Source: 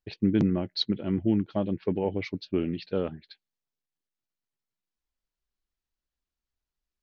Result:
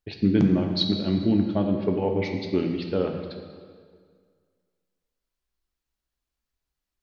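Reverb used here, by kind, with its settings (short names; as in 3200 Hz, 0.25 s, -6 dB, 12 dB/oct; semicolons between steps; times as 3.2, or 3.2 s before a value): plate-style reverb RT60 1.9 s, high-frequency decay 0.8×, DRR 3 dB; gain +2.5 dB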